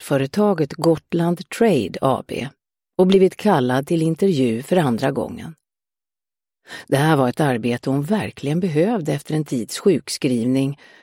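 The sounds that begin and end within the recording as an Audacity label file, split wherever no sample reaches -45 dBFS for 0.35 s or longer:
2.990000	5.580000	sound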